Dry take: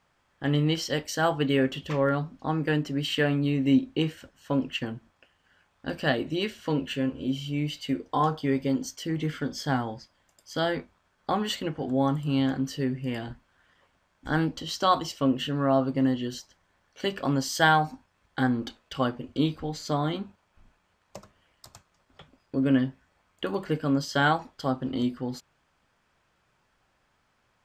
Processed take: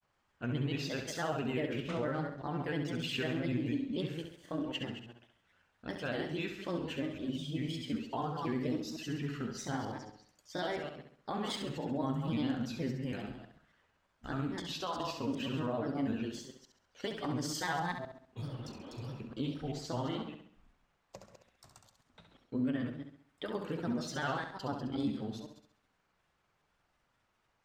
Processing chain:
delay that plays each chunk backwards 128 ms, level −9 dB
healed spectral selection 0:18.37–0:19.13, 200–3,800 Hz after
brickwall limiter −18.5 dBFS, peak gain reduction 10 dB
granular cloud 100 ms, grains 20 per second, spray 16 ms, pitch spread up and down by 3 semitones
flutter between parallel walls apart 11.5 metres, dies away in 0.55 s
level −7 dB

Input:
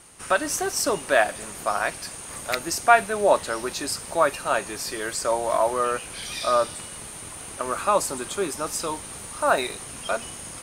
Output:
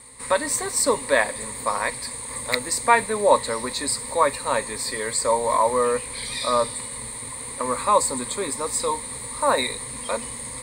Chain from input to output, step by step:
EQ curve with evenly spaced ripples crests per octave 0.98, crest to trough 15 dB

